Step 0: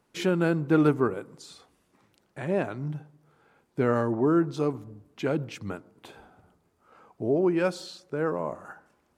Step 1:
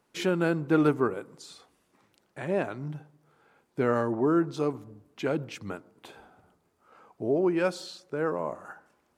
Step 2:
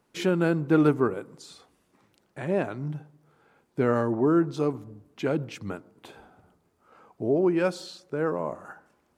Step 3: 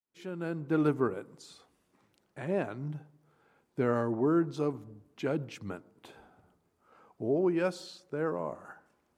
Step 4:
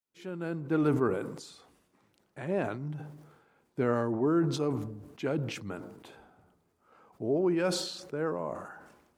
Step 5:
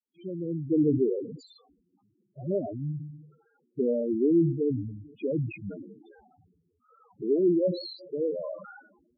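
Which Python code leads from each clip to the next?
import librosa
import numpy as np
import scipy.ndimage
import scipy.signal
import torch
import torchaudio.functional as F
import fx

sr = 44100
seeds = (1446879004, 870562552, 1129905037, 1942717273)

y1 = fx.low_shelf(x, sr, hz=190.0, db=-6.0)
y2 = fx.low_shelf(y1, sr, hz=360.0, db=4.5)
y3 = fx.fade_in_head(y2, sr, length_s=1.02)
y3 = F.gain(torch.from_numpy(y3), -5.0).numpy()
y4 = fx.sustainer(y3, sr, db_per_s=57.0)
y5 = fx.spec_topn(y4, sr, count=4)
y5 = F.gain(torch.from_numpy(y5), 5.0).numpy()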